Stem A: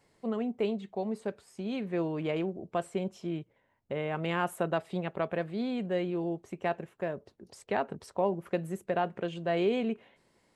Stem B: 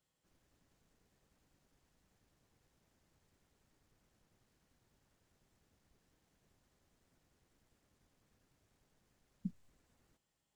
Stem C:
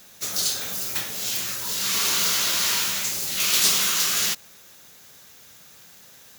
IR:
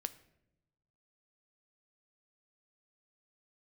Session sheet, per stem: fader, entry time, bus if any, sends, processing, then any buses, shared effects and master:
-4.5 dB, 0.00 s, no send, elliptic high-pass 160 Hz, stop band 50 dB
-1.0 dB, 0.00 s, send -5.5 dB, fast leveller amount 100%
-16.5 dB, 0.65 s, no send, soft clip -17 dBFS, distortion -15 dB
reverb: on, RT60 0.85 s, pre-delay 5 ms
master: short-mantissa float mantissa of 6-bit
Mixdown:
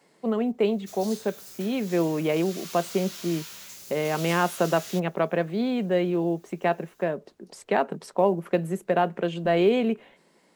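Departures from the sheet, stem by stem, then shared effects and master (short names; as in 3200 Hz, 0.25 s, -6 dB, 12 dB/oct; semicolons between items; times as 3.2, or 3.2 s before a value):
stem A -4.5 dB -> +7.5 dB; stem B: missing fast leveller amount 100%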